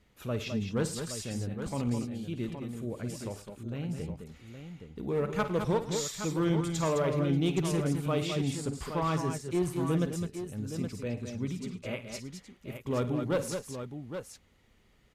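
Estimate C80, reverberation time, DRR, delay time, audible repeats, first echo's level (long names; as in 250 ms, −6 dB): no reverb audible, no reverb audible, no reverb audible, 50 ms, 4, −14.0 dB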